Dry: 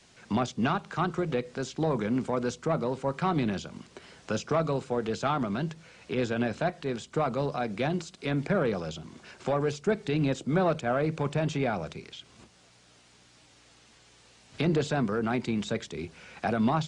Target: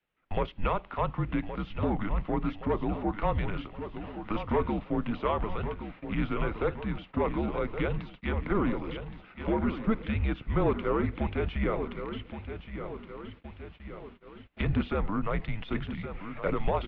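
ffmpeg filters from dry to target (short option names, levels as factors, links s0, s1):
-af "aecho=1:1:1120|2240|3360|4480|5600|6720:0.316|0.168|0.0888|0.0471|0.025|0.0132,agate=range=0.0794:threshold=0.00501:ratio=16:detection=peak,highpass=f=180:t=q:w=0.5412,highpass=f=180:t=q:w=1.307,lowpass=f=3300:t=q:w=0.5176,lowpass=f=3300:t=q:w=0.7071,lowpass=f=3300:t=q:w=1.932,afreqshift=-210"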